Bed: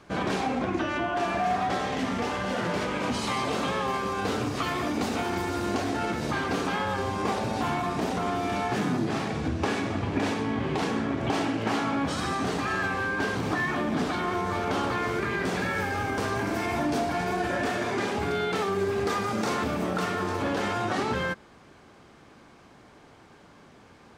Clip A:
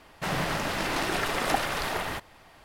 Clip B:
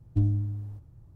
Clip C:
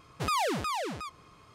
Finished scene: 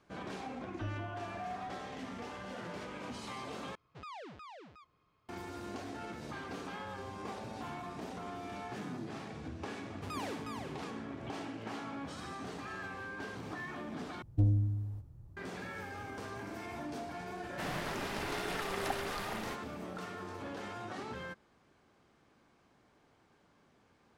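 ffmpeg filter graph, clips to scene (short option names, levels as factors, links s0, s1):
-filter_complex "[2:a]asplit=2[s0][s1];[3:a]asplit=2[s2][s3];[0:a]volume=0.178[s4];[s2]lowpass=4000[s5];[s1]asoftclip=type=tanh:threshold=0.126[s6];[s4]asplit=3[s7][s8][s9];[s7]atrim=end=3.754[s10];[s5]atrim=end=1.54,asetpts=PTS-STARTPTS,volume=0.126[s11];[s8]atrim=start=5.286:end=14.224[s12];[s6]atrim=end=1.15,asetpts=PTS-STARTPTS,volume=0.841[s13];[s9]atrim=start=15.366[s14];[s0]atrim=end=1.15,asetpts=PTS-STARTPTS,volume=0.15,afade=t=in:d=0.004:c=hsin,afade=t=out:st=1.146:d=0.004:c=hsin,adelay=650[s15];[s3]atrim=end=1.54,asetpts=PTS-STARTPTS,volume=0.2,afade=t=in:d=0.004:c=hsin,afade=t=out:st=1.536:d=0.004:c=hsin,adelay=9820[s16];[1:a]atrim=end=2.64,asetpts=PTS-STARTPTS,volume=0.299,afade=t=in:d=0.004:c=hsin,afade=t=out:st=2.636:d=0.004:c=hsin,adelay=17360[s17];[s10][s11]acrossfade=d=0.004:c1=hsin:c2=hsin[s18];[s18][s12]acrossfade=d=0.004:c1=hsin:c2=hsin[s19];[s19][s13]acrossfade=d=0.004:c1=hsin:c2=hsin[s20];[s20][s14]acrossfade=d=0.004:c1=hsin:c2=hsin[s21];[s21][s15][s16][s17]amix=inputs=4:normalize=0"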